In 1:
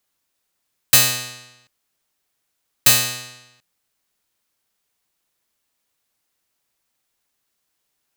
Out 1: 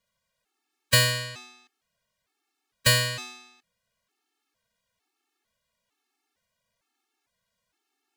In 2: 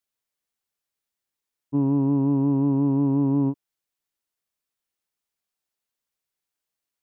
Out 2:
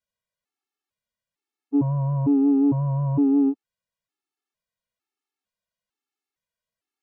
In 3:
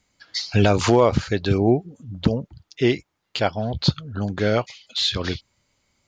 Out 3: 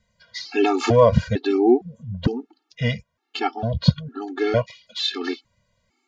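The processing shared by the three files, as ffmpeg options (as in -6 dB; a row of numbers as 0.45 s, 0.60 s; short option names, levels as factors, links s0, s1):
-af "aemphasis=mode=reproduction:type=50kf,afftfilt=real='re*gt(sin(2*PI*1.1*pts/sr)*(1-2*mod(floor(b*sr/1024/230),2)),0)':imag='im*gt(sin(2*PI*1.1*pts/sr)*(1-2*mod(floor(b*sr/1024/230),2)),0)':win_size=1024:overlap=0.75,volume=1.58"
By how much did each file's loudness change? -7.0 LU, +1.0 LU, +0.5 LU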